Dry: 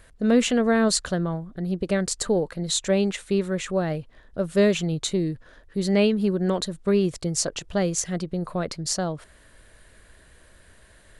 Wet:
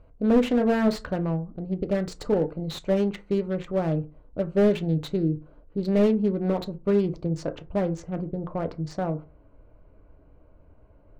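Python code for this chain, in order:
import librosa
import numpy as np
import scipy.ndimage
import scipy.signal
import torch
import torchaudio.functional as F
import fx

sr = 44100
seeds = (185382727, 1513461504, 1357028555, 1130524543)

y = fx.wiener(x, sr, points=25)
y = fx.lowpass(y, sr, hz=fx.steps((0.0, 3800.0), (7.26, 2000.0)), slope=12)
y = fx.rev_fdn(y, sr, rt60_s=0.31, lf_ratio=1.1, hf_ratio=0.45, size_ms=20.0, drr_db=7.5)
y = fx.slew_limit(y, sr, full_power_hz=69.0)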